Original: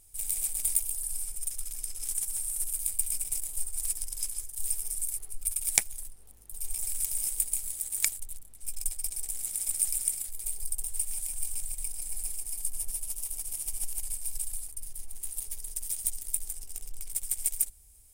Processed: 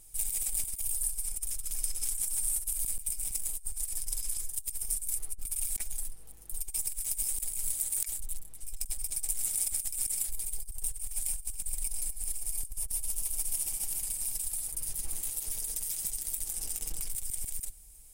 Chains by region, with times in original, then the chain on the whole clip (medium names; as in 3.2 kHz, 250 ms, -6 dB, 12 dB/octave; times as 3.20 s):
13.65–17.06 s: spectral peaks clipped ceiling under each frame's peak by 16 dB + compression, threshold -33 dBFS
whole clip: comb 6.2 ms, depth 52%; compressor with a negative ratio -31 dBFS, ratio -0.5